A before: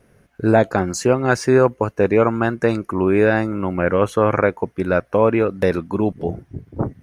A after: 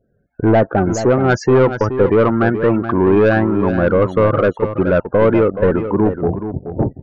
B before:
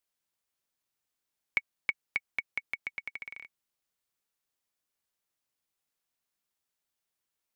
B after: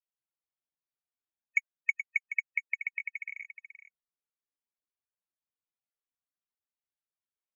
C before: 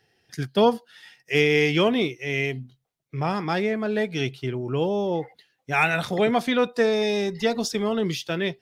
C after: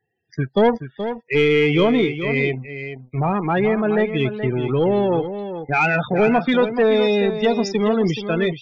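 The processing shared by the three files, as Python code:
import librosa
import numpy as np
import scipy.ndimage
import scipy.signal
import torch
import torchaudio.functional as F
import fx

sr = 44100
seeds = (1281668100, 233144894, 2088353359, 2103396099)

p1 = fx.high_shelf(x, sr, hz=5200.0, db=-7.5)
p2 = fx.leveller(p1, sr, passes=2)
p3 = np.where(np.abs(p2) >= 10.0 ** (-20.0 / 20.0), p2, 0.0)
p4 = p2 + F.gain(torch.from_numpy(p3), -4.0).numpy()
p5 = fx.spec_topn(p4, sr, count=32)
p6 = 10.0 ** (-2.5 / 20.0) * np.tanh(p5 / 10.0 ** (-2.5 / 20.0))
p7 = p6 + fx.echo_single(p6, sr, ms=426, db=-10.0, dry=0)
y = F.gain(torch.from_numpy(p7), -4.0).numpy()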